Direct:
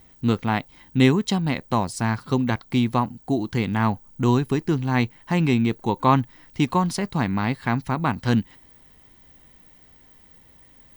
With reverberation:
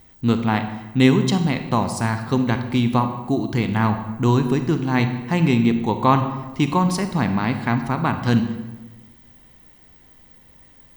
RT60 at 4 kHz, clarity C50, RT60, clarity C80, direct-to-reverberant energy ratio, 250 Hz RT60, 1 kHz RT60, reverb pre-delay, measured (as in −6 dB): 0.80 s, 9.0 dB, 1.2 s, 11.0 dB, 7.5 dB, 1.5 s, 1.1 s, 31 ms